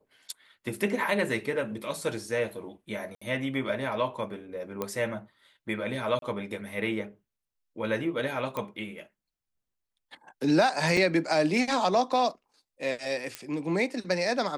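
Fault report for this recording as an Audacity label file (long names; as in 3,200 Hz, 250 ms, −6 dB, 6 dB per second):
3.150000	3.210000	drop-out 65 ms
4.820000	4.820000	click −17 dBFS
6.190000	6.220000	drop-out 32 ms
8.570000	8.570000	click −19 dBFS
10.970000	10.970000	drop-out 2.7 ms
13.350000	13.350000	click −18 dBFS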